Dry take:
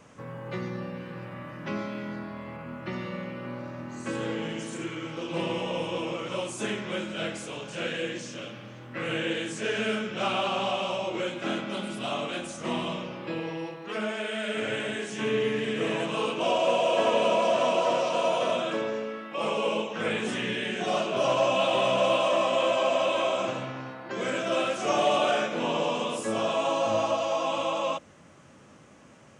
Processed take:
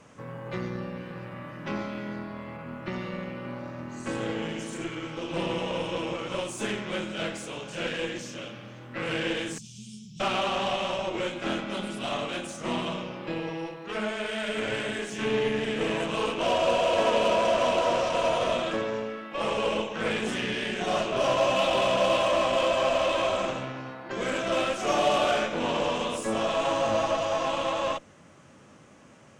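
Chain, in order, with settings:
0:09.58–0:10.20: elliptic band-stop filter 160–4,800 Hz, stop band 50 dB
harmonic generator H 8 −23 dB, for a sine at −12 dBFS

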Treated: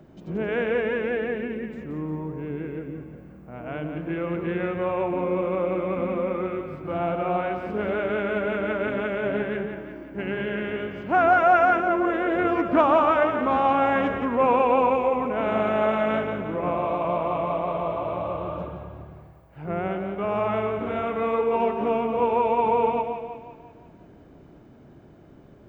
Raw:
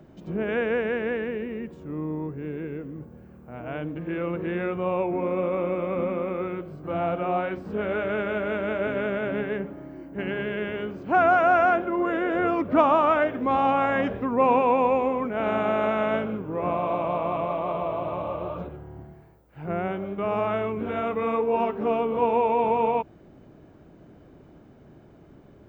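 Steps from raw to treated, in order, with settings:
floating-point word with a short mantissa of 8 bits
echo with a time of its own for lows and highs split 600 Hz, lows 134 ms, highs 176 ms, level −7 dB
highs frequency-modulated by the lows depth 0.12 ms

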